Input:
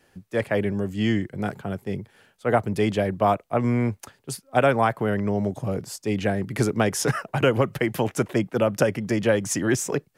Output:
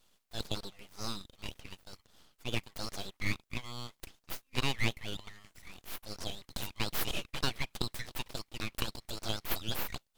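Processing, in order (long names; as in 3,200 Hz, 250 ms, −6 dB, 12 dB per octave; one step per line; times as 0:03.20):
elliptic high-pass filter 980 Hz, stop band 40 dB
full-wave rectification
level −2 dB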